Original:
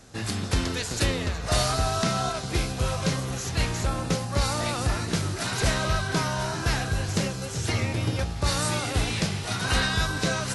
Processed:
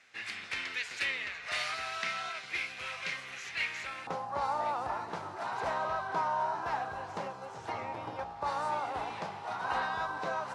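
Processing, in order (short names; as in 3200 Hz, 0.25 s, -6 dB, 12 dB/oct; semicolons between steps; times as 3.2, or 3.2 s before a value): band-pass 2200 Hz, Q 3.5, from 4.07 s 890 Hz; gain +4 dB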